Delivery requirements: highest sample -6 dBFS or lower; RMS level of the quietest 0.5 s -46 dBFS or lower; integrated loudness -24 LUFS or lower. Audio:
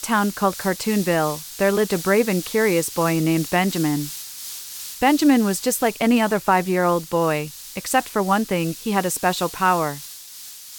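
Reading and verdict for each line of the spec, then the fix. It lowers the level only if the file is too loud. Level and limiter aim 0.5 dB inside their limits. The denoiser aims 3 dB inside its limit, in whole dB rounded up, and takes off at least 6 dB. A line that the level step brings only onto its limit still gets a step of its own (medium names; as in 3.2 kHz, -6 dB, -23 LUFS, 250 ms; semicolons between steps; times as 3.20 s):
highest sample -5.5 dBFS: fail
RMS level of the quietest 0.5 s -39 dBFS: fail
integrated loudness -20.5 LUFS: fail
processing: noise reduction 6 dB, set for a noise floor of -39 dBFS; trim -4 dB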